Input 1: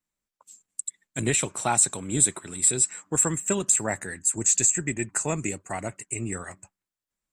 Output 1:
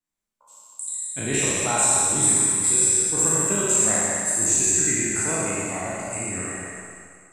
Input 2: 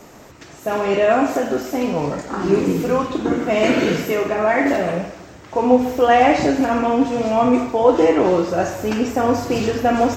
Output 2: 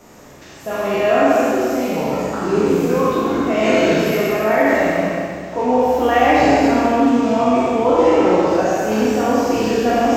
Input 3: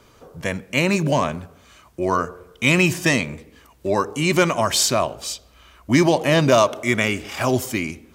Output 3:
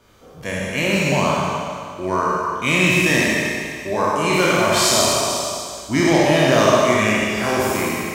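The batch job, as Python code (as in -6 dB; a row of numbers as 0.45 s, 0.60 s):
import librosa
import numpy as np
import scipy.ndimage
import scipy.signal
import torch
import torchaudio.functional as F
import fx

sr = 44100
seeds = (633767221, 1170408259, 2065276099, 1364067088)

y = fx.spec_trails(x, sr, decay_s=1.76)
y = fx.rev_schroeder(y, sr, rt60_s=1.7, comb_ms=29, drr_db=-1.5)
y = F.gain(torch.from_numpy(y), -5.5).numpy()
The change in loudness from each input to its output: +4.5 LU, +2.0 LU, +2.5 LU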